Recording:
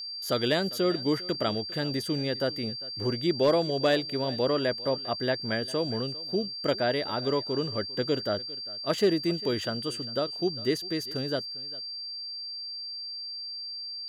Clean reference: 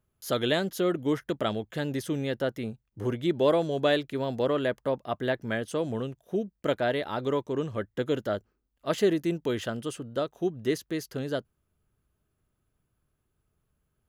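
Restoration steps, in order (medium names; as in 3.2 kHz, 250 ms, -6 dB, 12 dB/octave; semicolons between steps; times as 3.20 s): clip repair -15 dBFS; band-stop 4.7 kHz, Q 30; inverse comb 400 ms -20 dB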